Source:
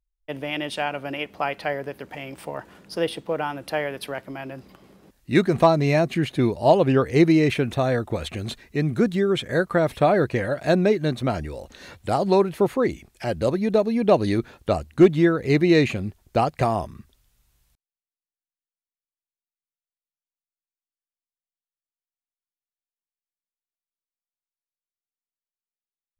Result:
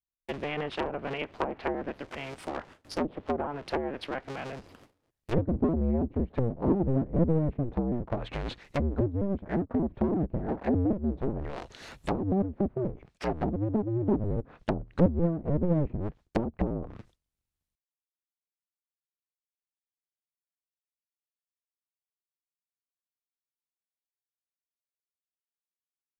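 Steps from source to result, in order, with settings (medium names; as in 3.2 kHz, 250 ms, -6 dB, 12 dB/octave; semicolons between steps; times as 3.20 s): cycle switcher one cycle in 2, inverted; gate with hold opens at -38 dBFS; low-pass that closes with the level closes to 310 Hz, closed at -19 dBFS; trim -3 dB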